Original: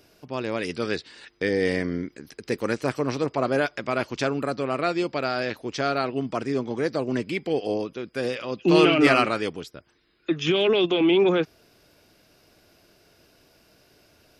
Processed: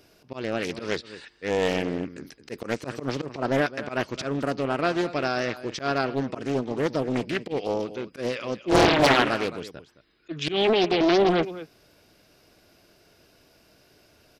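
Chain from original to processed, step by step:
volume swells 102 ms
slap from a distant wall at 37 metres, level −15 dB
highs frequency-modulated by the lows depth 0.98 ms

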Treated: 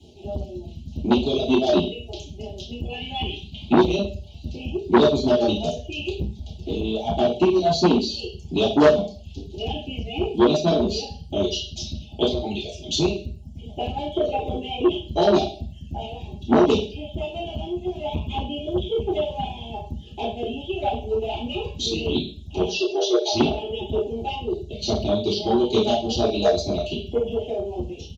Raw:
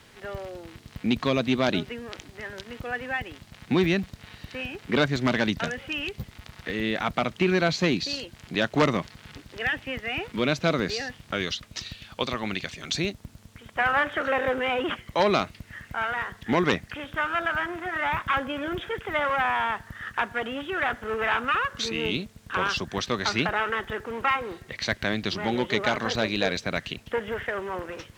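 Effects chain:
reverb reduction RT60 0.58 s
elliptic band-stop filter 750–2,900 Hz, stop band 40 dB
reverb reduction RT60 0.92 s
comb filter 4.8 ms, depth 70%
harmonic and percussive parts rebalanced harmonic −8 dB
0:02.89–0:03.73: flat-topped bell 1,900 Hz +15 dB 2.3 octaves
0:22.70–0:23.33: linear-phase brick-wall band-pass 310–6,900 Hz
convolution reverb RT60 0.45 s, pre-delay 3 ms, DRR −9.5 dB
saturating transformer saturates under 790 Hz
level −7 dB

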